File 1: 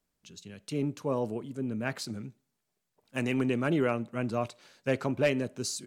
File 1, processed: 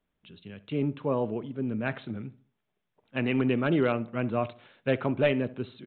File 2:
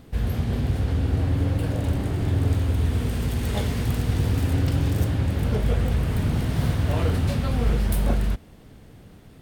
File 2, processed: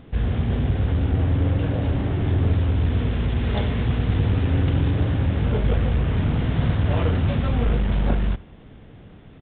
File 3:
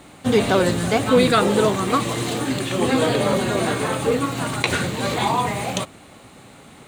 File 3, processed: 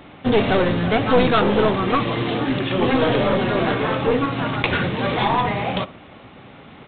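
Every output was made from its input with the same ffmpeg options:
ffmpeg -i in.wav -filter_complex "[0:a]aresample=8000,aeval=exprs='clip(val(0),-1,0.1)':channel_layout=same,aresample=44100,asplit=2[link_01][link_02];[link_02]adelay=70,lowpass=frequency=1800:poles=1,volume=-18.5dB,asplit=2[link_03][link_04];[link_04]adelay=70,lowpass=frequency=1800:poles=1,volume=0.39,asplit=2[link_05][link_06];[link_06]adelay=70,lowpass=frequency=1800:poles=1,volume=0.39[link_07];[link_01][link_03][link_05][link_07]amix=inputs=4:normalize=0,volume=2.5dB" out.wav

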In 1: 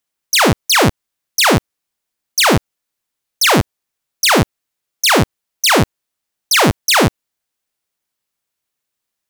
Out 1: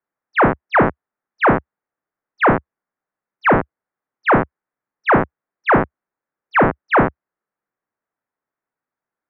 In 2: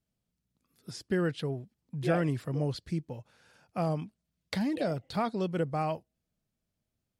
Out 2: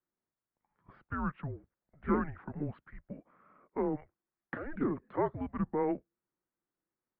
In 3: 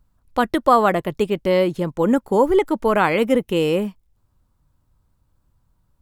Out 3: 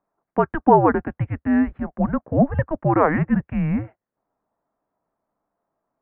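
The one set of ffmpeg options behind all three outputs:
ffmpeg -i in.wav -af "bandreject=frequency=370:width=12,highpass=frequency=440:width_type=q:width=0.5412,highpass=frequency=440:width_type=q:width=1.307,lowpass=frequency=2100:width_type=q:width=0.5176,lowpass=frequency=2100:width_type=q:width=0.7071,lowpass=frequency=2100:width_type=q:width=1.932,afreqshift=-300,volume=1.5dB" out.wav

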